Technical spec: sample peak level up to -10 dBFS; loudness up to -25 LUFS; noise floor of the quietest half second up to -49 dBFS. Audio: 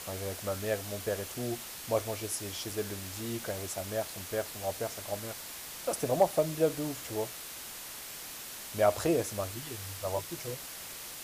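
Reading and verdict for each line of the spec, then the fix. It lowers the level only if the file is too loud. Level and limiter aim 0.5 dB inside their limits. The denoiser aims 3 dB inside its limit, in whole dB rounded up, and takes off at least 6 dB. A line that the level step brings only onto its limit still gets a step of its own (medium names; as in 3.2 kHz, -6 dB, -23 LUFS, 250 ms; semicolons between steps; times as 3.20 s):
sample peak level -12.5 dBFS: pass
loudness -34.0 LUFS: pass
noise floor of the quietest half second -44 dBFS: fail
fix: noise reduction 8 dB, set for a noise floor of -44 dBFS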